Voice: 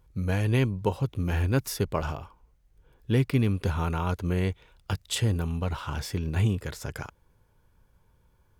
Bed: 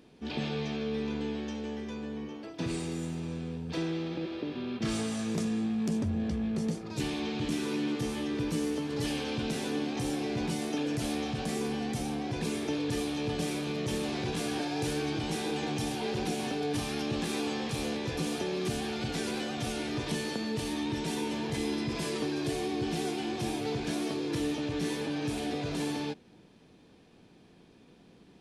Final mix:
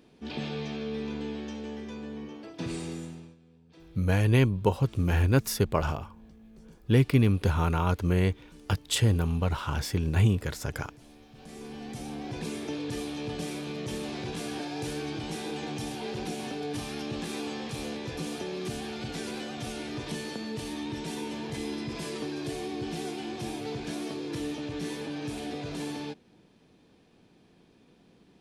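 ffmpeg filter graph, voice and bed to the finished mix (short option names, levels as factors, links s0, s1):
-filter_complex "[0:a]adelay=3800,volume=1.26[s0];[1:a]volume=7.94,afade=t=out:st=2.9:d=0.46:silence=0.0944061,afade=t=in:st=11.29:d=1.01:silence=0.112202[s1];[s0][s1]amix=inputs=2:normalize=0"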